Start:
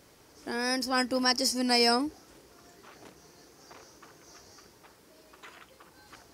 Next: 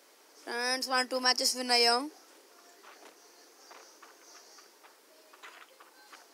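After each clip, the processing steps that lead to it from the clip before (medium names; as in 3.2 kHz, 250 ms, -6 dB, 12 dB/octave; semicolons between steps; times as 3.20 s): Bessel high-pass 450 Hz, order 8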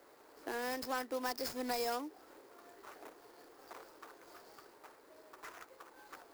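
median filter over 15 samples; treble shelf 10 kHz +11 dB; compression 2.5:1, threshold -41 dBFS, peak gain reduction 10.5 dB; trim +2.5 dB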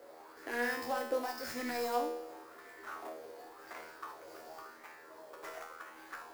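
peak limiter -32 dBFS, peak gain reduction 9 dB; feedback comb 80 Hz, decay 0.81 s, harmonics all, mix 90%; sweeping bell 0.92 Hz 510–2100 Hz +10 dB; trim +14.5 dB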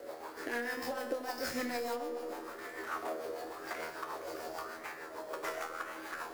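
compression 12:1, threshold -42 dBFS, peak gain reduction 15 dB; rotary cabinet horn 6.7 Hz; feedback echo behind a low-pass 89 ms, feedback 79%, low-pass 1.4 kHz, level -13 dB; trim +11 dB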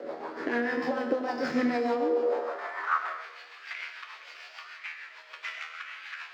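distance through air 200 m; high-pass sweep 190 Hz -> 2.5 kHz, 1.76–3.39 s; algorithmic reverb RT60 0.97 s, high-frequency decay 0.75×, pre-delay 55 ms, DRR 10 dB; trim +7 dB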